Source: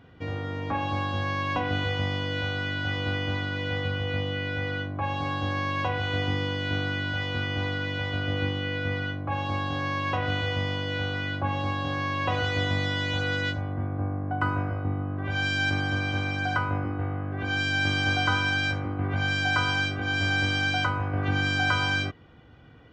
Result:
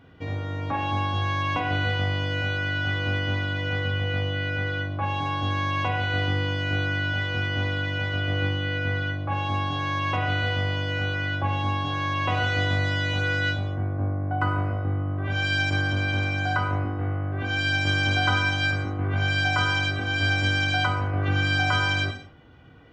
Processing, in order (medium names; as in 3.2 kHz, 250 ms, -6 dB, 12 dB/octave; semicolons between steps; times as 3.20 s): gated-style reverb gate 250 ms falling, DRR 4.5 dB